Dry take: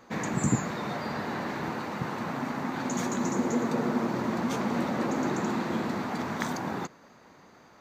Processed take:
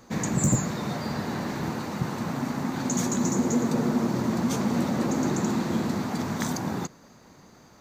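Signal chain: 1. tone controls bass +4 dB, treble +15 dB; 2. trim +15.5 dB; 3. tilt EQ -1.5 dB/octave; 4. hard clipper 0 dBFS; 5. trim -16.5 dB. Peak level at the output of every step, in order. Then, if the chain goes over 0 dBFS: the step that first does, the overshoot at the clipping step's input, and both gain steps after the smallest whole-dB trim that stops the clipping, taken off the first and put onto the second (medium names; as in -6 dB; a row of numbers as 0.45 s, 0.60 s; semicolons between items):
-8.0 dBFS, +7.5 dBFS, +8.5 dBFS, 0.0 dBFS, -16.5 dBFS; step 2, 8.5 dB; step 2 +6.5 dB, step 5 -7.5 dB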